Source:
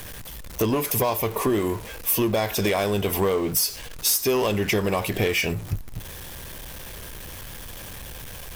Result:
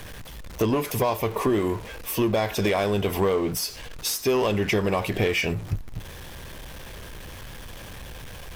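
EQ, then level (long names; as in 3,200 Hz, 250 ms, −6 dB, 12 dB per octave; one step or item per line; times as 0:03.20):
high-shelf EQ 7,300 Hz −11.5 dB
0.0 dB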